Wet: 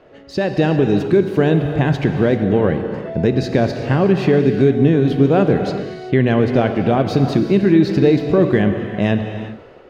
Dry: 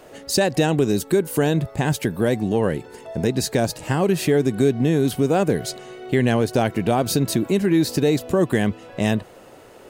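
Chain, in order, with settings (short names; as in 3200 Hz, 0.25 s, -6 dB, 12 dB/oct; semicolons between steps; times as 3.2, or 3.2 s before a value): bell 860 Hz -3.5 dB 0.45 oct; AGC; air absorption 260 m; non-linear reverb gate 0.42 s flat, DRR 6 dB; gain -1.5 dB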